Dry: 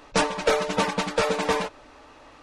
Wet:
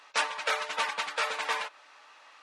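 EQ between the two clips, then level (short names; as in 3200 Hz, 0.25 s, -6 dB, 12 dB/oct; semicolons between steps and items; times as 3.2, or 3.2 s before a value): HPF 1200 Hz 12 dB/oct; dynamic EQ 5900 Hz, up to -4 dB, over -46 dBFS, Q 1; high shelf 9400 Hz -8 dB; 0.0 dB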